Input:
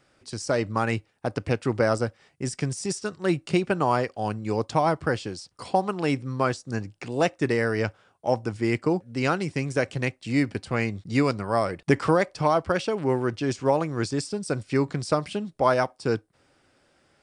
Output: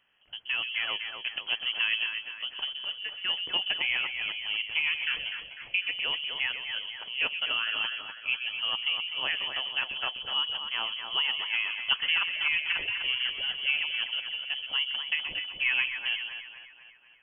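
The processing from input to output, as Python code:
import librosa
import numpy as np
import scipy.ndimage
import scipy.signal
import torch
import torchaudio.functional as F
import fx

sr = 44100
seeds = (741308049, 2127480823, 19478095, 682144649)

y = fx.freq_invert(x, sr, carrier_hz=3200)
y = fx.echo_split(y, sr, split_hz=2300.0, low_ms=249, high_ms=126, feedback_pct=52, wet_db=-6)
y = F.gain(torch.from_numpy(y), -7.0).numpy()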